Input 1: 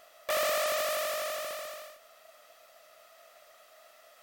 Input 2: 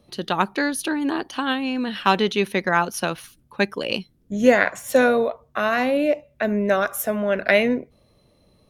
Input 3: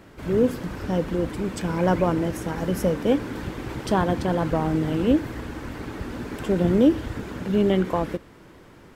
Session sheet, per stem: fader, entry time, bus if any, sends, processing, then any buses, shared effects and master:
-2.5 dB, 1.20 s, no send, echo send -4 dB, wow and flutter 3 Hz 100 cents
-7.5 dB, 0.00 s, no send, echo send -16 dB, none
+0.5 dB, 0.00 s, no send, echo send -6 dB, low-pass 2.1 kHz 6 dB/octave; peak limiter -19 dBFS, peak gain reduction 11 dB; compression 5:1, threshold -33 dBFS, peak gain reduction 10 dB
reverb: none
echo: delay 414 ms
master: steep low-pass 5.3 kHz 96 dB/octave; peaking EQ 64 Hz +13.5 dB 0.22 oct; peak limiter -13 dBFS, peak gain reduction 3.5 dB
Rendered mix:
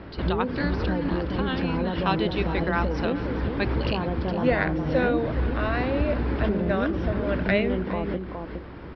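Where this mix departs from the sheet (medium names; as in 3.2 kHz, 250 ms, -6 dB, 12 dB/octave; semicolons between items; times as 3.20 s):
stem 1: muted; stem 3 +0.5 dB -> +7.5 dB; master: missing peak limiter -13 dBFS, peak gain reduction 3.5 dB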